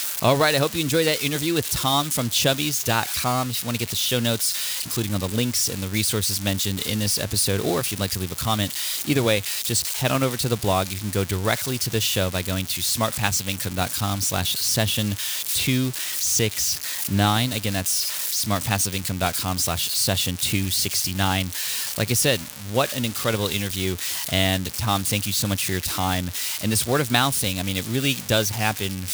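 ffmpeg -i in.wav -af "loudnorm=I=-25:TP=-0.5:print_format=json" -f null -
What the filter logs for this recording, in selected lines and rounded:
"input_i" : "-22.3",
"input_tp" : "-3.4",
"input_lra" : "1.2",
"input_thresh" : "-32.3",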